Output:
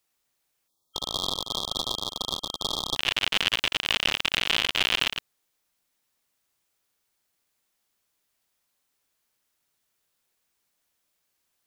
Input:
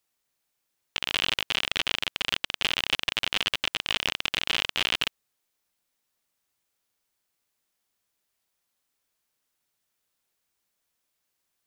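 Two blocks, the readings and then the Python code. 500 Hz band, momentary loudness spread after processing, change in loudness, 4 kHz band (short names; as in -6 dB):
+3.0 dB, 7 LU, +1.0 dB, +1.5 dB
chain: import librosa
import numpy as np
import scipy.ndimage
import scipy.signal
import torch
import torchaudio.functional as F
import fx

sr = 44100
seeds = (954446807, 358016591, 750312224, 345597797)

y = fx.reverse_delay(x, sr, ms=100, wet_db=-7.0)
y = fx.spec_erase(y, sr, start_s=0.68, length_s=2.29, low_hz=1300.0, high_hz=3200.0)
y = y * 10.0 ** (2.0 / 20.0)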